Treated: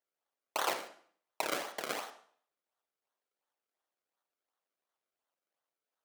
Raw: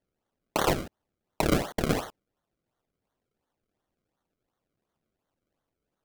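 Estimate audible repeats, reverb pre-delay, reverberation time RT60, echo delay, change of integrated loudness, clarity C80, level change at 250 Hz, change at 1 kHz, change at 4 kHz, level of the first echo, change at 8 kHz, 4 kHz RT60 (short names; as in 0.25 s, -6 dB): none, 36 ms, 0.50 s, none, -8.0 dB, 14.5 dB, -19.5 dB, -5.5 dB, -4.5 dB, none, -4.5 dB, 0.50 s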